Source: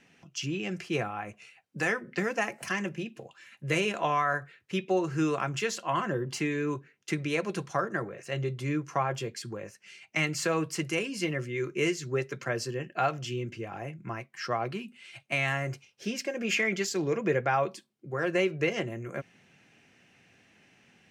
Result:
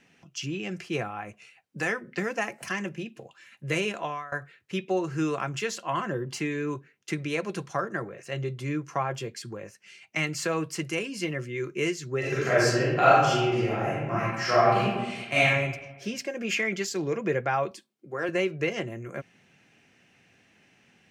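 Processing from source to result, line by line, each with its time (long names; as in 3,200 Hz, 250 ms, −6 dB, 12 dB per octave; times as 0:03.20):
0:03.88–0:04.32: fade out, to −21 dB
0:12.19–0:15.41: thrown reverb, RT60 1.2 s, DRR −10 dB
0:17.71–0:18.29: high-pass filter 200 Hz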